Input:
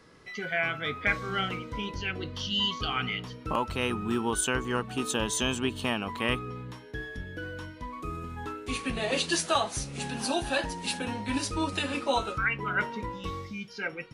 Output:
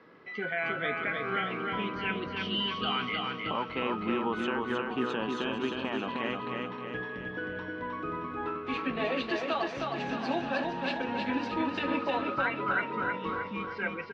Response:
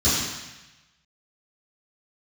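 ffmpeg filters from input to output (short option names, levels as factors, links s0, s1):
-filter_complex "[0:a]lowpass=f=5100:w=0.5412,lowpass=f=5100:w=1.3066,acrossover=split=160 2900:gain=0.0891 1 0.126[s0][s1][s2];[s0][s1][s2]amix=inputs=3:normalize=0,alimiter=limit=0.0668:level=0:latency=1:release=234,asplit=2[s3][s4];[s4]aecho=0:1:312|624|936|1248|1560|1872|2184:0.668|0.348|0.181|0.094|0.0489|0.0254|0.0132[s5];[s3][s5]amix=inputs=2:normalize=0,volume=1.26"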